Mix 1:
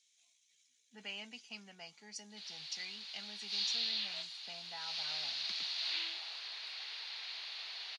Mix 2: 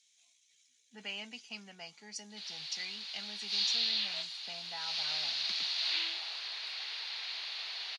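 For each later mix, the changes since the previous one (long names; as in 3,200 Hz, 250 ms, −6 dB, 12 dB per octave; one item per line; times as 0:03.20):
speech +3.5 dB
background +4.5 dB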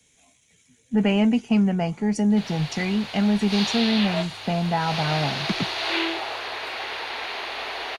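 master: remove resonant band-pass 4,600 Hz, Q 2.5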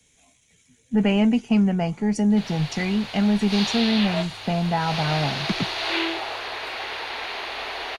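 master: add low-shelf EQ 64 Hz +7.5 dB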